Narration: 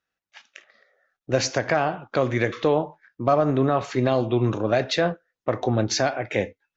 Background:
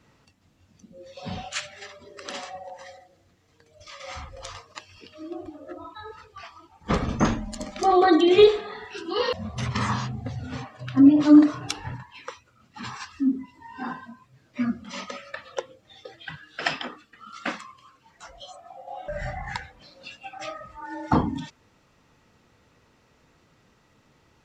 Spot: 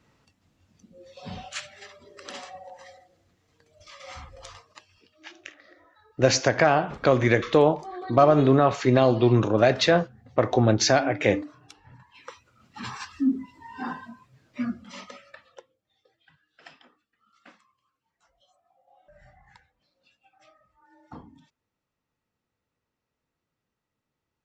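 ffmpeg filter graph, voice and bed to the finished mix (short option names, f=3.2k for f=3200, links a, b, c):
-filter_complex "[0:a]adelay=4900,volume=2.5dB[a];[1:a]volume=15.5dB,afade=t=out:st=4.3:d=0.95:silence=0.16788,afade=t=in:st=11.87:d=0.8:silence=0.105925,afade=t=out:st=14.1:d=1.61:silence=0.0707946[b];[a][b]amix=inputs=2:normalize=0"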